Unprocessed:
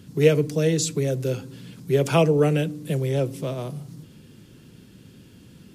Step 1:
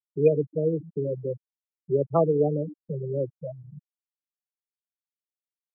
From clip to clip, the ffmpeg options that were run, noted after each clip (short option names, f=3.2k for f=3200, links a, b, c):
-filter_complex "[0:a]acrossover=split=4500[a][b];[b]acompressor=threshold=-54dB:ratio=4:attack=1:release=60[c];[a][c]amix=inputs=2:normalize=0,afftfilt=real='re*gte(hypot(re,im),0.251)':imag='im*gte(hypot(re,im),0.251)':win_size=1024:overlap=0.75,lowshelf=f=250:g=-9.5"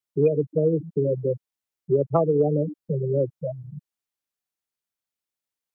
-af "acompressor=threshold=-22dB:ratio=6,volume=6dB"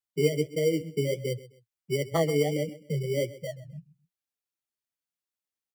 -filter_complex "[0:a]acrossover=split=110|280|690[a][b][c][d];[c]acrusher=samples=17:mix=1:aa=0.000001[e];[a][b][e][d]amix=inputs=4:normalize=0,flanger=delay=8.3:depth=5.7:regen=40:speed=1.5:shape=sinusoidal,aecho=1:1:130|260:0.126|0.0352,volume=-1dB"